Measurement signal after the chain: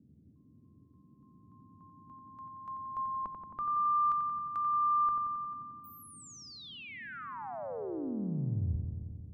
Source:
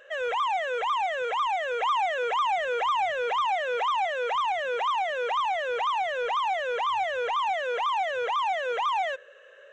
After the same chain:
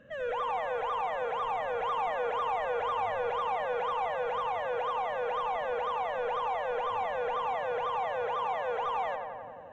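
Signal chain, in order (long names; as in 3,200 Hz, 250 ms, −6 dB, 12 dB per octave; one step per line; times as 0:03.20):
spectral tilt −3 dB per octave
noise in a band 77–280 Hz −55 dBFS
feedback echo with a low-pass in the loop 89 ms, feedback 78%, low-pass 2,800 Hz, level −6 dB
level −7 dB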